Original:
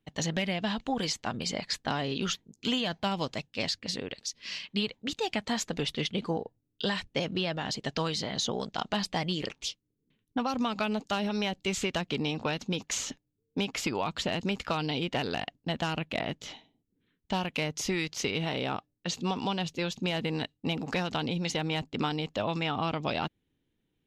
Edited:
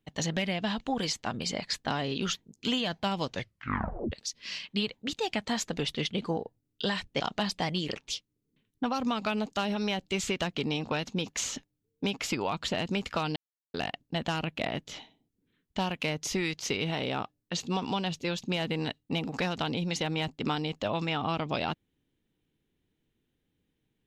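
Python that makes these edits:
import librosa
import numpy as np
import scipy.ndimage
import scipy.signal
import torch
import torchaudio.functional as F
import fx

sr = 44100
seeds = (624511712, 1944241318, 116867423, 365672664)

y = fx.edit(x, sr, fx.tape_stop(start_s=3.26, length_s=0.86),
    fx.cut(start_s=7.2, length_s=1.54),
    fx.silence(start_s=14.9, length_s=0.38), tone=tone)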